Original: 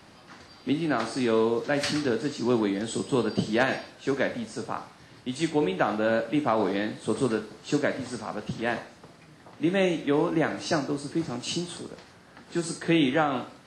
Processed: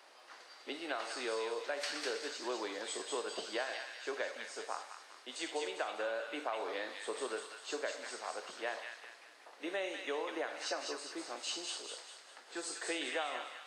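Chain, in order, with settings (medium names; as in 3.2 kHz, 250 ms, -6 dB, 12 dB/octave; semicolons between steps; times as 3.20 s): high-pass 450 Hz 24 dB/octave; compression, threshold -29 dBFS, peak gain reduction 10.5 dB; on a send: feedback echo behind a high-pass 200 ms, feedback 45%, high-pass 1.6 kHz, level -3 dB; on the sum: trim -5.5 dB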